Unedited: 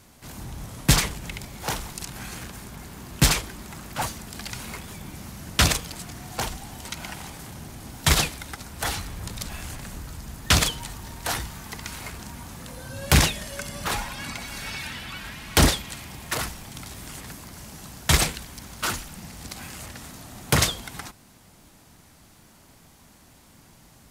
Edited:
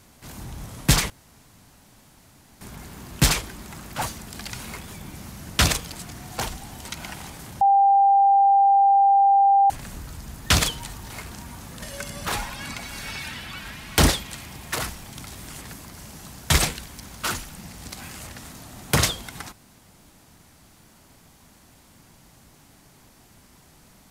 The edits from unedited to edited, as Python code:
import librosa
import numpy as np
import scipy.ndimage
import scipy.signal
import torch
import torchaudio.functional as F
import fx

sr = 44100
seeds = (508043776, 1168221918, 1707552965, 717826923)

y = fx.edit(x, sr, fx.room_tone_fill(start_s=1.1, length_s=1.51),
    fx.bleep(start_s=7.61, length_s=2.09, hz=793.0, db=-13.0),
    fx.cut(start_s=11.1, length_s=0.88),
    fx.cut(start_s=12.7, length_s=0.71), tone=tone)